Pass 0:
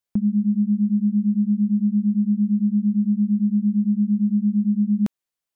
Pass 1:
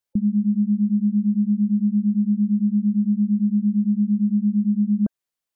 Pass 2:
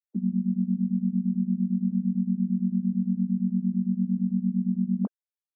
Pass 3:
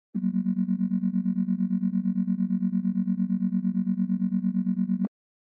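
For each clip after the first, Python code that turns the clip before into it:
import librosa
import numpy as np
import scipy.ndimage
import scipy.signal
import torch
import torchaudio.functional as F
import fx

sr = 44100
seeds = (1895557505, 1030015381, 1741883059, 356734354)

y1 = fx.spec_gate(x, sr, threshold_db=-30, keep='strong')
y2 = fx.sine_speech(y1, sr)
y2 = y2 * 10.0 ** (-6.0 / 20.0)
y3 = scipy.ndimage.median_filter(y2, 41, mode='constant')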